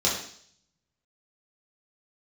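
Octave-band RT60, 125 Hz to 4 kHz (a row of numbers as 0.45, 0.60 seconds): 0.90, 0.65, 0.60, 0.55, 0.60, 0.70 seconds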